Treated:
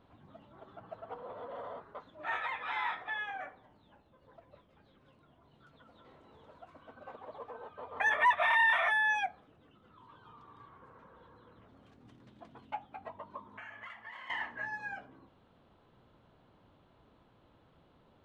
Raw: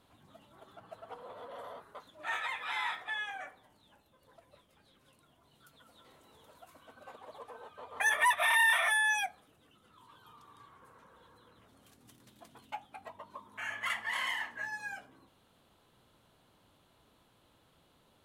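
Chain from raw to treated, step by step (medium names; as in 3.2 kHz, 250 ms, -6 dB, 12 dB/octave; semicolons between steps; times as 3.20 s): 13.53–14.30 s: compression 6:1, threshold -46 dBFS, peak gain reduction 14.5 dB; tape spacing loss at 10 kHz 31 dB; trim +5 dB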